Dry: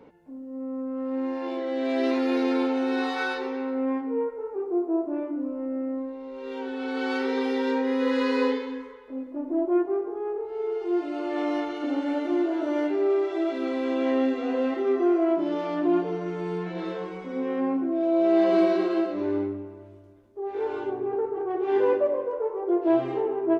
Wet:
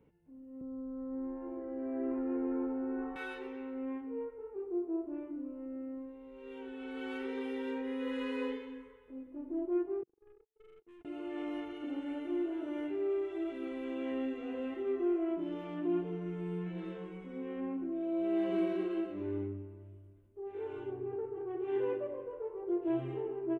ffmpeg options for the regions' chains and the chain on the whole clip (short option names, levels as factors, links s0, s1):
-filter_complex "[0:a]asettb=1/sr,asplit=3[s0][s1][s2];[s0]atrim=end=0.614[s3];[s1]atrim=start=0.61:end=3.16,asetpts=PTS-STARTPTS,afade=t=in:d=0.004:c=qsin,afade=t=out:st=2.546:d=0.004:c=qsin,lowpass=f=1400:w=0.5412,lowpass=f=1400:w=1.3066,lowshelf=f=120:g=11.5[s4];[s2]atrim=start=3.156[s5];[s3][s4]acrossfade=d=0.004:c1=hsin:c2=qsin[s6];[s6][s5]acrossfade=d=0.004:c1=qsin:c2=hsin,asettb=1/sr,asplit=3[s7][s8][s9];[s7]atrim=end=10.034[s10];[s8]atrim=start=10.03:end=11.05,asetpts=PTS-STARTPTS,afade=t=in:d=0.004:c=qsin,afade=t=out:st=1.016:d=0.004:c=qsin,agate=range=0.00316:threshold=0.0398:ratio=16:release=100:detection=peak,acompressor=threshold=0.0251:ratio=3:attack=3.2:release=140:knee=1:detection=peak,aeval=exprs='(tanh(178*val(0)+0.1)-tanh(0.1))/178':c=same[s11];[s9]atrim=start=11.046[s12];[s10][s11]acrossfade=d=0.004:c1=hsin:c2=qsin[s13];[s13][s12]acrossfade=d=0.004:c1=qsin:c2=hsin,firequalizer=gain_entry='entry(140,0);entry(250,-12);entry(360,-9);entry(600,-17);entry(1500,-14);entry(2900,-9);entry(4500,-26);entry(8700,-8)':delay=0.05:min_phase=1,dynaudnorm=f=210:g=3:m=1.78,volume=0.562"